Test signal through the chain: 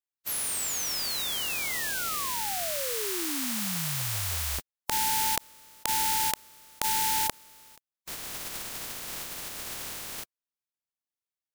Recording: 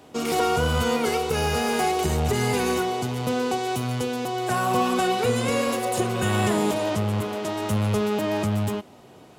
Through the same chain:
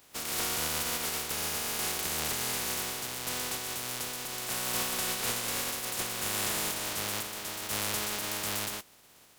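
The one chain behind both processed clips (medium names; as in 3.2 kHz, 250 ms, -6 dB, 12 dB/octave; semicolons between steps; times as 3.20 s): spectral contrast reduction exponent 0.22; trim -9.5 dB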